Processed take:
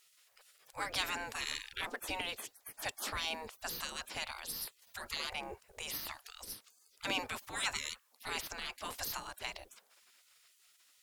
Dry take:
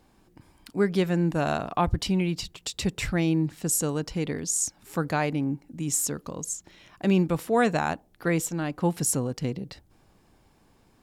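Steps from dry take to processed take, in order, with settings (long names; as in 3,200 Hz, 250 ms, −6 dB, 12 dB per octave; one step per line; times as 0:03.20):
gate on every frequency bin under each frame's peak −25 dB weak
in parallel at −4 dB: soft clipping −39 dBFS, distortion −10 dB
on the sum: level +2.5 dB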